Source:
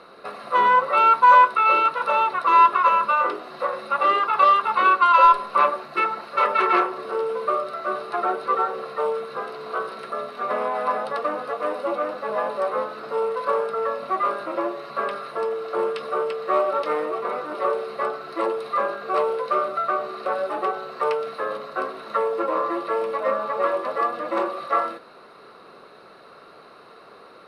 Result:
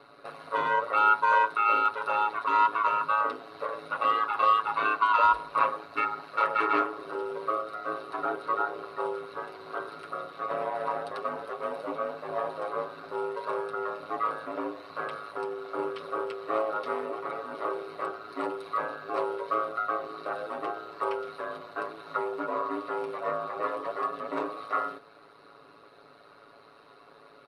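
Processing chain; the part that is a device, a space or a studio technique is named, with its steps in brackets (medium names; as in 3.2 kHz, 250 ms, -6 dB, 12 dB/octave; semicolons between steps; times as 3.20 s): ring-modulated robot voice (ring modulator 54 Hz; comb 7.1 ms); trim -6 dB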